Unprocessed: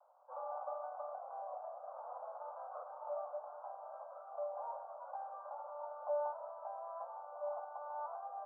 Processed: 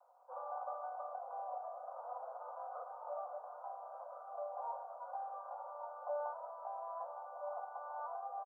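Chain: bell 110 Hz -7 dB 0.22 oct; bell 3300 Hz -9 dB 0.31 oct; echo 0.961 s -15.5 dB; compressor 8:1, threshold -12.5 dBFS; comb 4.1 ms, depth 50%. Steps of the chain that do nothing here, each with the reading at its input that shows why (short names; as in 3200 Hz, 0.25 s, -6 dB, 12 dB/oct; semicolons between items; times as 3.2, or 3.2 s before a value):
bell 110 Hz: input band starts at 480 Hz; bell 3300 Hz: input band ends at 1400 Hz; compressor, threshold -12.5 dBFS: input peak -28.5 dBFS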